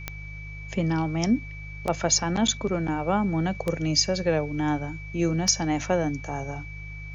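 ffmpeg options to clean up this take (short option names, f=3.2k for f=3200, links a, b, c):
-af "adeclick=t=4,bandreject=f=51:t=h:w=4,bandreject=f=102:t=h:w=4,bandreject=f=153:t=h:w=4,bandreject=f=2.3k:w=30,agate=range=-21dB:threshold=-30dB"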